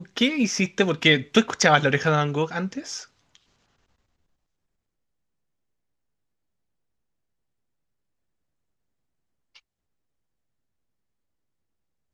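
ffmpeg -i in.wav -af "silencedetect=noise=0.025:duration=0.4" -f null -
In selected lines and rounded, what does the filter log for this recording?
silence_start: 3.02
silence_end: 12.13 | silence_duration: 9.11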